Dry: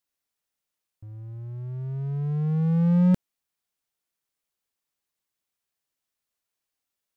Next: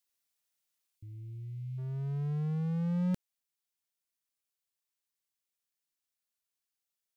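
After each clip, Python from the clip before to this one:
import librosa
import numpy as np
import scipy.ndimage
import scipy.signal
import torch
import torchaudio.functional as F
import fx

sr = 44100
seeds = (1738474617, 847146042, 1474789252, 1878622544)

y = fx.spec_erase(x, sr, start_s=0.97, length_s=0.81, low_hz=360.0, high_hz=2000.0)
y = fx.high_shelf(y, sr, hz=2000.0, db=8.5)
y = fx.rider(y, sr, range_db=3, speed_s=0.5)
y = F.gain(torch.from_numpy(y), -8.5).numpy()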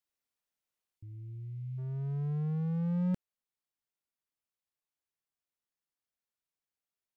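y = fx.high_shelf(x, sr, hz=2600.0, db=-10.5)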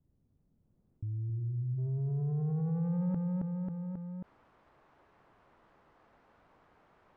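y = fx.filter_sweep_lowpass(x, sr, from_hz=150.0, to_hz=1100.0, start_s=0.58, end_s=2.85, q=1.1)
y = fx.echo_feedback(y, sr, ms=270, feedback_pct=35, wet_db=-5.5)
y = fx.env_flatten(y, sr, amount_pct=70)
y = F.gain(torch.from_numpy(y), -4.0).numpy()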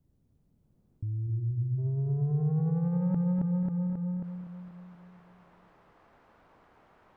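y = fx.echo_feedback(x, sr, ms=242, feedback_pct=60, wet_db=-10.5)
y = F.gain(torch.from_numpy(y), 3.5).numpy()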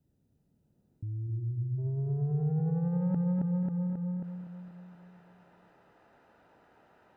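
y = fx.notch_comb(x, sr, f0_hz=1100.0)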